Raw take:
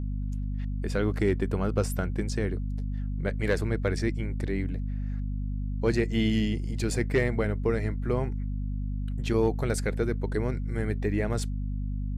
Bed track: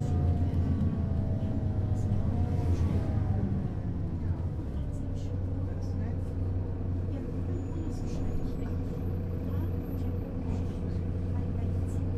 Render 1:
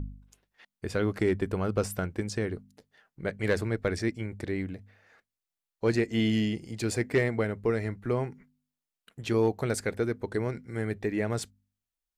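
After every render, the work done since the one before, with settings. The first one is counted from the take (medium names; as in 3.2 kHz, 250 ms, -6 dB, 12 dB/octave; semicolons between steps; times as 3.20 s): de-hum 50 Hz, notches 5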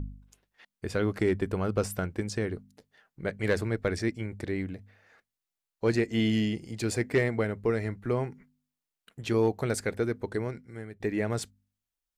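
10.26–11.00 s: fade out, to -17 dB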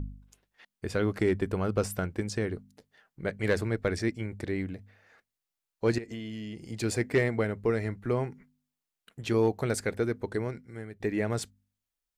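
5.98–6.62 s: compression 10:1, threshold -35 dBFS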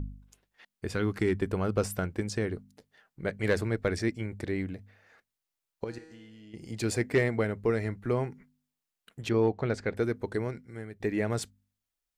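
0.94–1.42 s: peaking EQ 590 Hz -9.5 dB 0.57 oct; 5.84–6.54 s: feedback comb 160 Hz, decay 1.3 s, mix 80%; 9.29–9.97 s: distance through air 160 m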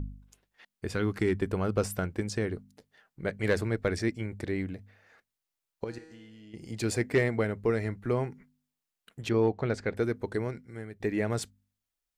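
no audible change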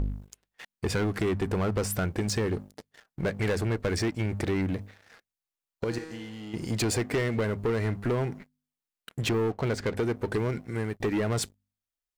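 compression 4:1, threshold -32 dBFS, peak gain reduction 10.5 dB; waveshaping leveller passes 3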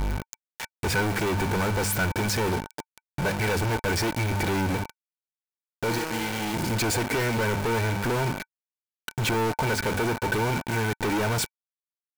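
companded quantiser 2-bit; small resonant body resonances 900/1500/2300 Hz, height 12 dB, ringing for 50 ms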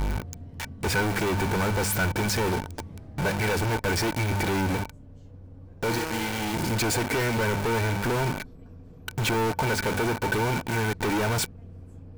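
add bed track -13.5 dB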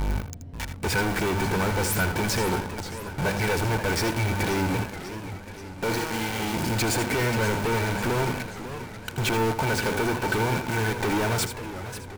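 on a send: delay 80 ms -10 dB; on the sum: modulated delay 537 ms, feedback 57%, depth 219 cents, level -12 dB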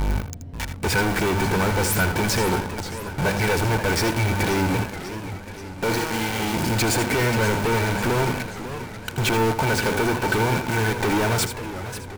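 trim +3.5 dB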